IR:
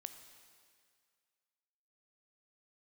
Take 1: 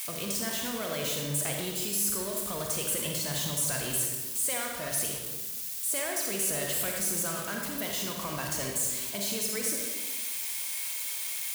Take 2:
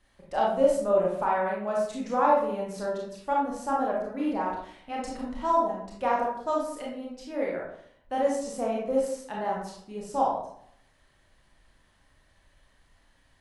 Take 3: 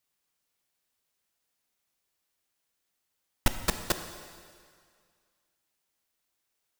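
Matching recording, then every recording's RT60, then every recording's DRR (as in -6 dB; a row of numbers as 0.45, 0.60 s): 3; 1.3, 0.65, 2.1 s; 0.0, -3.5, 8.0 dB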